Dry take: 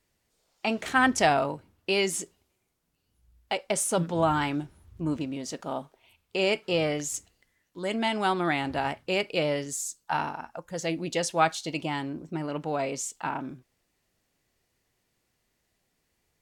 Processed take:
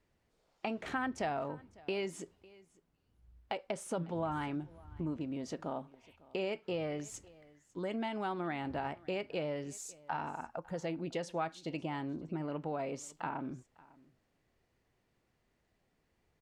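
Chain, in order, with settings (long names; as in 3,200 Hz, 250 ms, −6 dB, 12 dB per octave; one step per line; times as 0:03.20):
low-pass filter 1,600 Hz 6 dB per octave
downward compressor 3 to 1, threshold −38 dBFS, peak gain reduction 14.5 dB
on a send: single-tap delay 552 ms −23 dB
on the sum: level +1 dB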